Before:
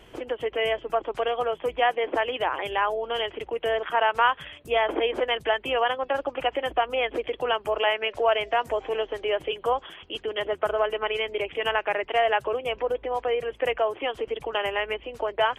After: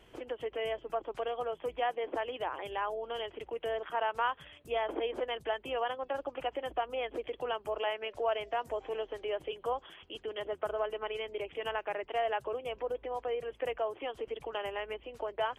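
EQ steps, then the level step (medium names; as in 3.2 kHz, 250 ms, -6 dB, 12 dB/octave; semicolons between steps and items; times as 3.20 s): dynamic bell 2.2 kHz, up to -5 dB, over -38 dBFS, Q 0.88; -8.5 dB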